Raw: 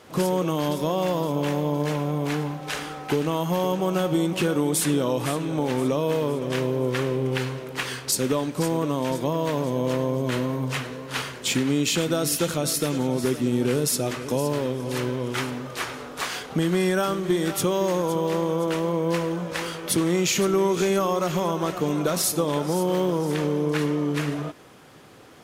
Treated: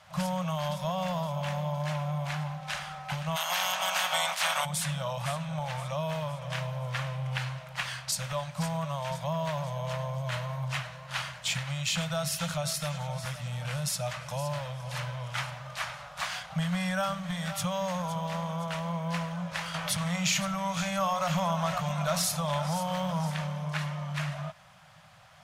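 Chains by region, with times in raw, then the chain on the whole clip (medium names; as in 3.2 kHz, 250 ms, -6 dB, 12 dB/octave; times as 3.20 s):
3.35–4.64 s: spectral peaks clipped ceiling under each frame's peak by 28 dB + high-pass 360 Hz
19.74–23.30 s: hum notches 60/120/180/240/300/360/420/480/540/600 Hz + level flattener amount 50%
whole clip: elliptic band-stop 180–610 Hz, stop band 40 dB; treble shelf 9.4 kHz -11 dB; trim -3 dB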